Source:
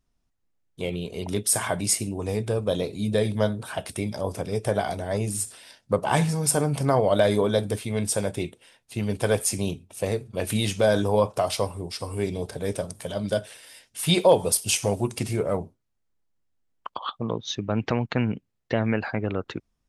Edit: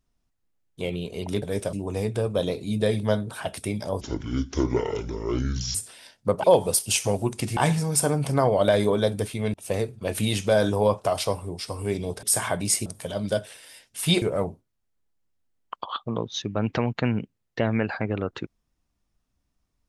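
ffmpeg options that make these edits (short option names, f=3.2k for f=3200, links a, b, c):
-filter_complex "[0:a]asplit=11[a][b][c][d][e][f][g][h][i][j][k];[a]atrim=end=1.422[l];[b]atrim=start=12.548:end=12.862[m];[c]atrim=start=2.048:end=4.334[n];[d]atrim=start=4.33:end=5.39,asetpts=PTS-STARTPTS,asetrate=26901,aresample=44100[o];[e]atrim=start=5.386:end=6.082[p];[f]atrim=start=14.218:end=15.352[q];[g]atrim=start=6.078:end=8.052[r];[h]atrim=start=9.858:end=12.552[s];[i]atrim=start=1.418:end=2.052[t];[j]atrim=start=12.858:end=14.222[u];[k]atrim=start=15.348[v];[l][m]acrossfade=d=0.004:c1=hsin:c2=hsin[w];[w][n]acrossfade=d=0.004:c1=hsin:c2=hsin[x];[x][o]acrossfade=d=0.004:c1=hsin:c2=hsin[y];[y][p]acrossfade=d=0.004:c1=hsin:c2=hsin[z];[z][q]acrossfade=d=0.004:c1=hsin:c2=hsin[aa];[aa][r]acrossfade=d=0.004:c1=hsin:c2=hsin[ab];[ab][s]acrossfade=d=0.004:c1=hsin:c2=hsin[ac];[ac][t]acrossfade=d=0.004:c1=hsin:c2=hsin[ad];[ad][u]acrossfade=d=0.004:c1=hsin:c2=hsin[ae];[ae][v]acrossfade=d=0.004:c1=hsin:c2=hsin"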